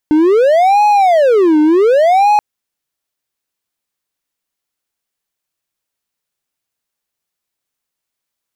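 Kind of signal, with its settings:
siren wail 303–837 Hz 0.67 per second triangle −4.5 dBFS 2.28 s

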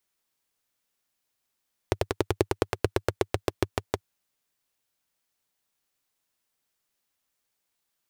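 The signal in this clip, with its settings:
pulse-train model of a single-cylinder engine, changing speed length 2.09 s, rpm 1,300, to 700, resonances 100/370 Hz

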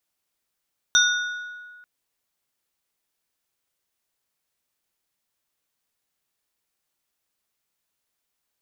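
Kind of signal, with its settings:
struck glass plate, lowest mode 1,460 Hz, modes 3, decay 1.75 s, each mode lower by 0.5 dB, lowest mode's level −16 dB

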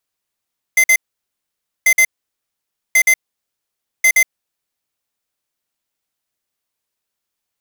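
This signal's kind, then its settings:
beeps in groups square 2,070 Hz, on 0.07 s, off 0.05 s, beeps 2, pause 0.90 s, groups 4, −10.5 dBFS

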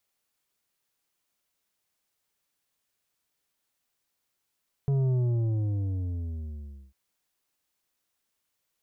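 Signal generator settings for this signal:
bass drop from 140 Hz, over 2.05 s, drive 8 dB, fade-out 1.83 s, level −23 dB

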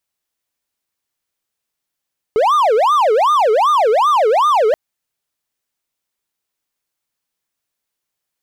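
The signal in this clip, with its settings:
siren wail 422–1,220 Hz 2.6 per second triangle −8 dBFS 2.38 s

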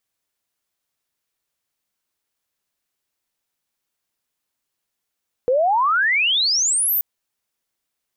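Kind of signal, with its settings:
glide logarithmic 480 Hz → 15,000 Hz −14 dBFS → −16.5 dBFS 1.53 s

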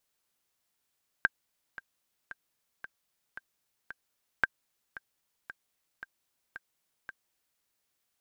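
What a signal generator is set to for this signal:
click track 113 BPM, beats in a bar 6, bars 2, 1,580 Hz, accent 18 dB −10 dBFS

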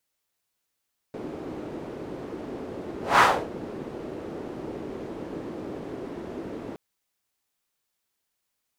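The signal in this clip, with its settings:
pass-by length 5.62 s, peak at 0:02.06, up 0.20 s, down 0.31 s, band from 350 Hz, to 1,200 Hz, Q 1.8, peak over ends 19.5 dB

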